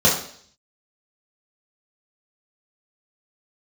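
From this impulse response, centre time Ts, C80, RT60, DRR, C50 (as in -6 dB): 33 ms, 10.0 dB, 0.55 s, -5.5 dB, 6.0 dB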